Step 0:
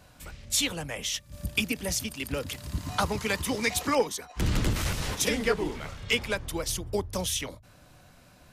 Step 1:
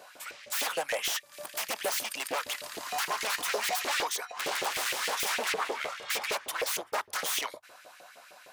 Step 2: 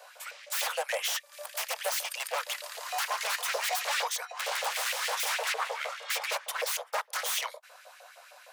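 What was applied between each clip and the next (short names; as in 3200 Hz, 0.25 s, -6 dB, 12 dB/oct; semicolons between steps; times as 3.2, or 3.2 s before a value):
wavefolder -30.5 dBFS; LFO high-pass saw up 6.5 Hz 420–2500 Hz; gain +4 dB
steep high-pass 470 Hz 96 dB/oct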